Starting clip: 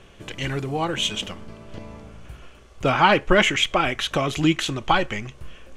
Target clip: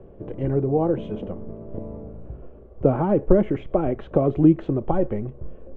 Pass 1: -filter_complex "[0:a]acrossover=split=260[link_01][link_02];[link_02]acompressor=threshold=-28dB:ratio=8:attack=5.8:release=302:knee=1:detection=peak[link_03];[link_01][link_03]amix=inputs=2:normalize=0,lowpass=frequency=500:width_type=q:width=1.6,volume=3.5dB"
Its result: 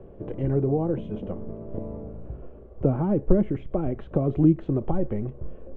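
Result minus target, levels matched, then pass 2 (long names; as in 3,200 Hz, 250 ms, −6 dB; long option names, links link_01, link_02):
downward compressor: peak gain reduction +8.5 dB
-filter_complex "[0:a]acrossover=split=260[link_01][link_02];[link_02]acompressor=threshold=-18.5dB:ratio=8:attack=5.8:release=302:knee=1:detection=peak[link_03];[link_01][link_03]amix=inputs=2:normalize=0,lowpass=frequency=500:width_type=q:width=1.6,volume=3.5dB"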